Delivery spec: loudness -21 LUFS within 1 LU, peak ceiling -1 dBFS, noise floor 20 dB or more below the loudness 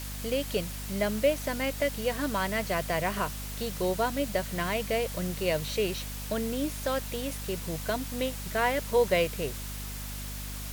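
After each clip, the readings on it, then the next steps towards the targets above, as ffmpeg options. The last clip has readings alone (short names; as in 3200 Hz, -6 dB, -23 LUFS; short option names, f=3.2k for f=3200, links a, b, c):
hum 50 Hz; harmonics up to 250 Hz; hum level -37 dBFS; noise floor -38 dBFS; noise floor target -51 dBFS; loudness -30.5 LUFS; peak -13.0 dBFS; loudness target -21.0 LUFS
-> -af "bandreject=f=50:t=h:w=6,bandreject=f=100:t=h:w=6,bandreject=f=150:t=h:w=6,bandreject=f=200:t=h:w=6,bandreject=f=250:t=h:w=6"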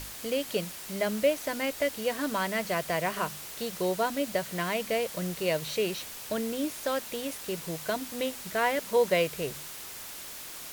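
hum none; noise floor -42 dBFS; noise floor target -51 dBFS
-> -af "afftdn=nr=9:nf=-42"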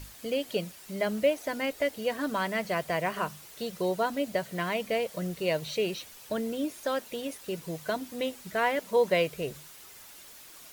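noise floor -50 dBFS; noise floor target -51 dBFS
-> -af "afftdn=nr=6:nf=-50"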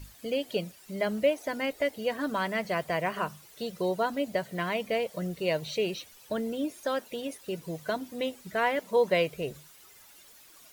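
noise floor -55 dBFS; loudness -31.0 LUFS; peak -13.5 dBFS; loudness target -21.0 LUFS
-> -af "volume=10dB"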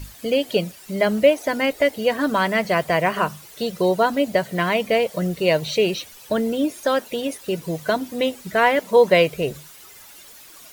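loudness -21.0 LUFS; peak -3.5 dBFS; noise floor -45 dBFS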